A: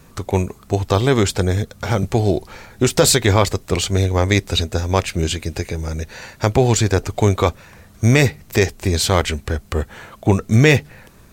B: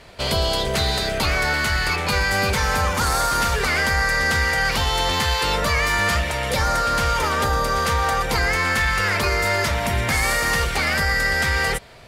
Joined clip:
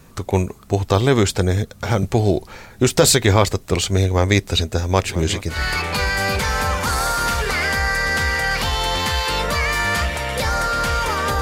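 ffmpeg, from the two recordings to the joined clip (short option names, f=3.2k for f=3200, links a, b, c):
-filter_complex "[0:a]asplit=3[a][b][c];[a]afade=t=out:st=5.04:d=0.02[d];[b]aecho=1:1:984|1968|2952|3936:0.2|0.0858|0.0369|0.0159,afade=t=in:st=5.04:d=0.02,afade=t=out:st=5.62:d=0.02[e];[c]afade=t=in:st=5.62:d=0.02[f];[d][e][f]amix=inputs=3:normalize=0,apad=whole_dur=11.41,atrim=end=11.41,atrim=end=5.62,asetpts=PTS-STARTPTS[g];[1:a]atrim=start=1.62:end=7.55,asetpts=PTS-STARTPTS[h];[g][h]acrossfade=d=0.14:c1=tri:c2=tri"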